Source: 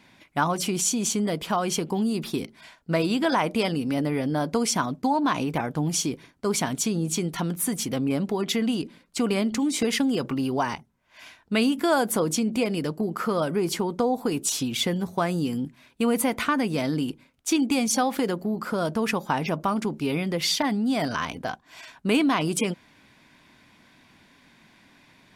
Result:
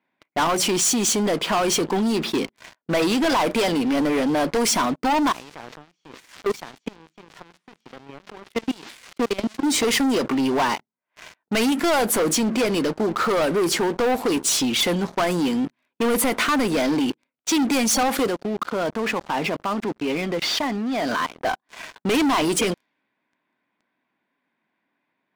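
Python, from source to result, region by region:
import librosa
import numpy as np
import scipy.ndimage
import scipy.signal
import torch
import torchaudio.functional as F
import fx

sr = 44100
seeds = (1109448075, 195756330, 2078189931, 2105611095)

y = fx.chain(x, sr, fx.crossing_spikes(level_db=-19.0),
    fx.lowpass(hz=5700.0, slope=12),
    fx.level_steps(step_db=23), at=(5.32, 9.64))
y = fx.chain(y, sr, fx.cvsd(bps=64000),
    fx.highpass(hz=87.0, slope=12),
    fx.level_steps(step_db=16), at=(18.27, 21.43))
y = scipy.signal.sosfilt(scipy.signal.butter(2, 270.0, 'highpass', fs=sr, output='sos'), y)
y = fx.env_lowpass(y, sr, base_hz=2000.0, full_db=-21.5)
y = fx.leveller(y, sr, passes=5)
y = F.gain(torch.from_numpy(y), -6.5).numpy()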